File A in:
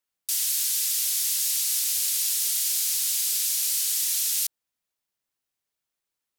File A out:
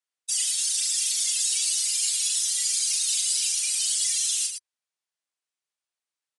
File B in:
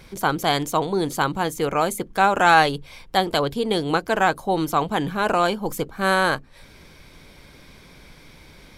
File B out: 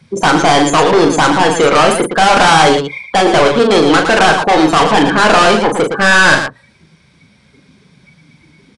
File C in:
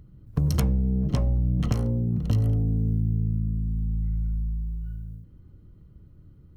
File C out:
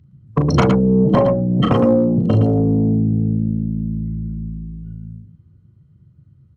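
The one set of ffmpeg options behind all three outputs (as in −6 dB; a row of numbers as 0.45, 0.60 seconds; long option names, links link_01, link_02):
-filter_complex "[0:a]acrossover=split=2600[link_01][link_02];[link_02]acompressor=threshold=-35dB:ratio=4:attack=1:release=60[link_03];[link_01][link_03]amix=inputs=2:normalize=0,afftdn=noise_reduction=29:noise_floor=-36,highpass=110,asplit=2[link_04][link_05];[link_05]highpass=frequency=720:poles=1,volume=28dB,asoftclip=type=tanh:threshold=-3.5dB[link_06];[link_04][link_06]amix=inputs=2:normalize=0,lowpass=frequency=3100:poles=1,volume=-6dB,bandreject=frequency=60:width_type=h:width=6,bandreject=frequency=120:width_type=h:width=6,bandreject=frequency=180:width_type=h:width=6,crystalizer=i=1.5:c=0,asoftclip=type=hard:threshold=-11dB,aecho=1:1:37.9|113.7:0.501|0.447,aresample=22050,aresample=44100,volume=3dB"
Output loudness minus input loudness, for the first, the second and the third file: 0.0, +11.5, +9.5 LU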